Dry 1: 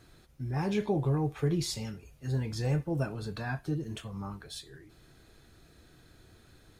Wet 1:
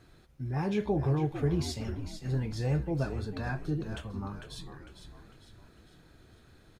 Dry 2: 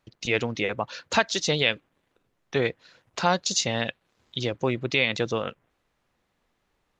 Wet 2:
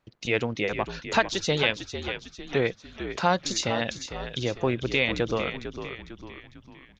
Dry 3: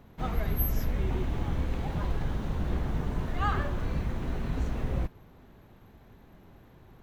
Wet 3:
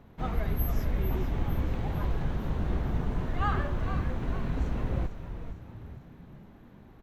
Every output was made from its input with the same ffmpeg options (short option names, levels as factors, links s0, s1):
-filter_complex "[0:a]highshelf=f=4400:g=-7,asplit=6[s0][s1][s2][s3][s4][s5];[s1]adelay=451,afreqshift=-66,volume=0.335[s6];[s2]adelay=902,afreqshift=-132,volume=0.16[s7];[s3]adelay=1353,afreqshift=-198,volume=0.0767[s8];[s4]adelay=1804,afreqshift=-264,volume=0.0372[s9];[s5]adelay=2255,afreqshift=-330,volume=0.0178[s10];[s0][s6][s7][s8][s9][s10]amix=inputs=6:normalize=0"